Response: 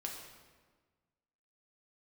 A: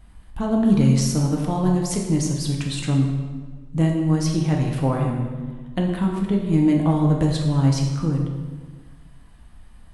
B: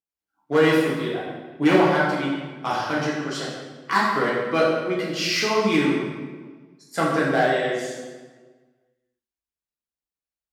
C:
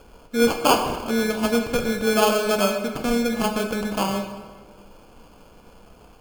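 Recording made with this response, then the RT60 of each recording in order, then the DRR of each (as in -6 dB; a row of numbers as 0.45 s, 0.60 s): A; 1.4 s, 1.4 s, 1.4 s; -0.5 dB, -6.5 dB, 3.5 dB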